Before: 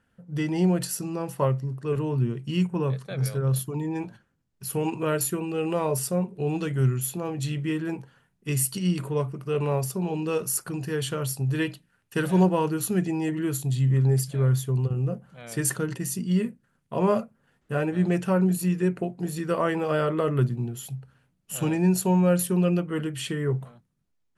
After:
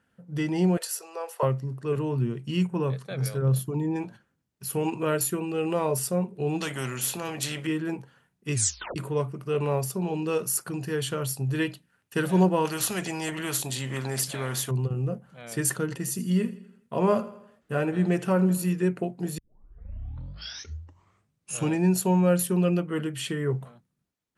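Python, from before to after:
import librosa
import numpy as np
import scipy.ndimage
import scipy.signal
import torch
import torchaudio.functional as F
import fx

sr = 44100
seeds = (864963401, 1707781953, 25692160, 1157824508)

y = fx.ellip_highpass(x, sr, hz=420.0, order=4, stop_db=40, at=(0.77, 1.43))
y = fx.tilt_shelf(y, sr, db=3.5, hz=740.0, at=(3.42, 3.96))
y = fx.spectral_comp(y, sr, ratio=2.0, at=(6.61, 7.67))
y = fx.spectral_comp(y, sr, ratio=2.0, at=(12.65, 14.71))
y = fx.echo_feedback(y, sr, ms=82, feedback_pct=51, wet_db=-16.5, at=(15.83, 18.73))
y = fx.edit(y, sr, fx.tape_stop(start_s=8.54, length_s=0.42),
    fx.tape_start(start_s=19.38, length_s=2.32), tone=tone)
y = scipy.signal.sosfilt(scipy.signal.butter(2, 60.0, 'highpass', fs=sr, output='sos'), y)
y = fx.peak_eq(y, sr, hz=92.0, db=-3.0, octaves=1.5)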